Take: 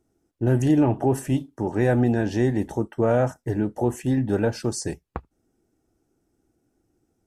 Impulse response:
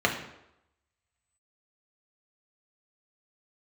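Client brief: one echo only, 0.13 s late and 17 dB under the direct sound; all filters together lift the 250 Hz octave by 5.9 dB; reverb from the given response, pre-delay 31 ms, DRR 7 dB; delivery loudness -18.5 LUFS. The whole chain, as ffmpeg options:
-filter_complex "[0:a]equalizer=f=250:t=o:g=7,aecho=1:1:130:0.141,asplit=2[a][b];[1:a]atrim=start_sample=2205,adelay=31[c];[b][c]afir=irnorm=-1:irlink=0,volume=-21.5dB[d];[a][d]amix=inputs=2:normalize=0"

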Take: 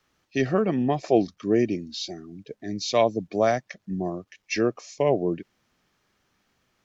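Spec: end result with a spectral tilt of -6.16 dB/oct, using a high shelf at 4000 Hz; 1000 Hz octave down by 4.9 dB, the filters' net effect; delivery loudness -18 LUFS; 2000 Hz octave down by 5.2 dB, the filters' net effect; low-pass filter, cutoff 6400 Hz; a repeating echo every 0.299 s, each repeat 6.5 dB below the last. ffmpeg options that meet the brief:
-af "lowpass=6.4k,equalizer=f=1k:t=o:g=-7.5,equalizer=f=2k:t=o:g=-3.5,highshelf=f=4k:g=-4,aecho=1:1:299|598|897|1196|1495|1794:0.473|0.222|0.105|0.0491|0.0231|0.0109,volume=8.5dB"

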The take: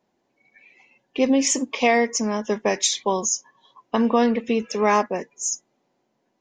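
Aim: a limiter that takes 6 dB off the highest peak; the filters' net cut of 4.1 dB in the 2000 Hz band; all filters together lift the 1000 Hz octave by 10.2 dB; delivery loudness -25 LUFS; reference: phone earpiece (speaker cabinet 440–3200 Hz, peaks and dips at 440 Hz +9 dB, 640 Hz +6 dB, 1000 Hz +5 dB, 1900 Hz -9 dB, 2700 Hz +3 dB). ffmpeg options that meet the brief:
-af "equalizer=f=1k:t=o:g=8.5,equalizer=f=2k:t=o:g=-3,alimiter=limit=-9.5dB:level=0:latency=1,highpass=440,equalizer=f=440:t=q:w=4:g=9,equalizer=f=640:t=q:w=4:g=6,equalizer=f=1k:t=q:w=4:g=5,equalizer=f=1.9k:t=q:w=4:g=-9,equalizer=f=2.7k:t=q:w=4:g=3,lowpass=f=3.2k:w=0.5412,lowpass=f=3.2k:w=1.3066,volume=-5.5dB"

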